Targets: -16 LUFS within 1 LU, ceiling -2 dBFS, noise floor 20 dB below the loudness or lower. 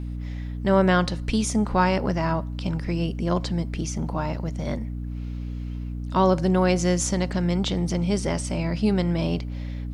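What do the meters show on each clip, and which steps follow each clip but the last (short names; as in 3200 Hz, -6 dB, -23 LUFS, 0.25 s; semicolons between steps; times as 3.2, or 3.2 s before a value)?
hum 60 Hz; harmonics up to 300 Hz; hum level -29 dBFS; loudness -25.0 LUFS; peak -7.5 dBFS; loudness target -16.0 LUFS
-> notches 60/120/180/240/300 Hz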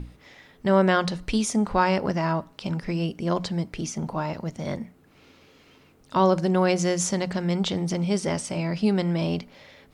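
hum none; loudness -25.5 LUFS; peak -8.0 dBFS; loudness target -16.0 LUFS
-> gain +9.5 dB; limiter -2 dBFS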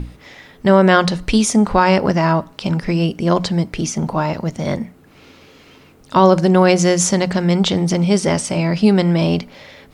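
loudness -16.0 LUFS; peak -2.0 dBFS; noise floor -47 dBFS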